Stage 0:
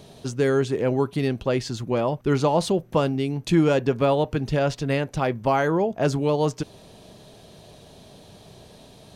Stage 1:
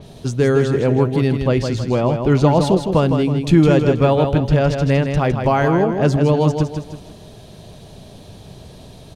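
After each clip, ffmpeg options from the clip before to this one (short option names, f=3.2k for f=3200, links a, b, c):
-af "lowshelf=f=150:g=10.5,aecho=1:1:160|320|480|640|800:0.473|0.185|0.072|0.0281|0.0109,adynamicequalizer=threshold=0.00708:dfrequency=5000:dqfactor=0.7:tfrequency=5000:tqfactor=0.7:attack=5:release=100:ratio=0.375:range=2:mode=cutabove:tftype=highshelf,volume=3.5dB"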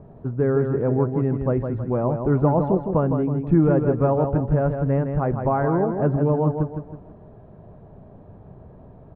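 -af "lowpass=f=1.4k:w=0.5412,lowpass=f=1.4k:w=1.3066,volume=-5dB"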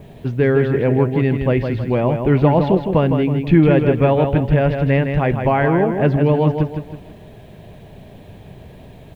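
-af "aexciter=amount=15.1:drive=4.9:freq=2k,volume=5dB"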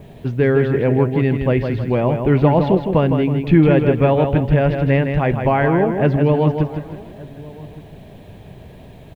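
-filter_complex "[0:a]asplit=2[a][b];[b]adelay=1166,volume=-21dB,highshelf=f=4k:g=-26.2[c];[a][c]amix=inputs=2:normalize=0"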